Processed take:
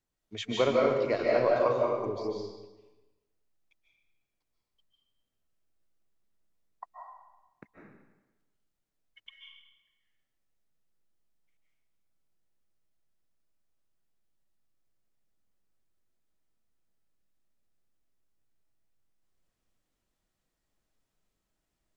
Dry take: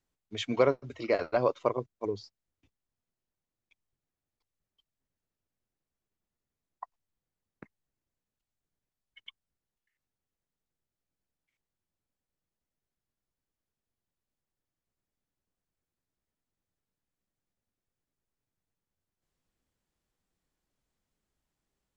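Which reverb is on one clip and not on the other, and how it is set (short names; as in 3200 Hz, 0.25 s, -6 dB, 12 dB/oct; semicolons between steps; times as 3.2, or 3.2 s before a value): digital reverb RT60 1.1 s, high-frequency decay 0.9×, pre-delay 0.11 s, DRR -3.5 dB; gain -2.5 dB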